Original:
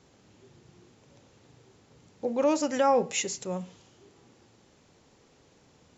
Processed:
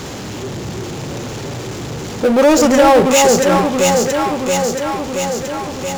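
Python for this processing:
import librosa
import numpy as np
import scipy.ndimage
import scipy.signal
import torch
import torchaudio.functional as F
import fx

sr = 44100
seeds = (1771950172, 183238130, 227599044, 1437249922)

y = fx.echo_alternate(x, sr, ms=338, hz=870.0, feedback_pct=69, wet_db=-3.0)
y = fx.power_curve(y, sr, exponent=0.5)
y = y * 10.0 ** (8.5 / 20.0)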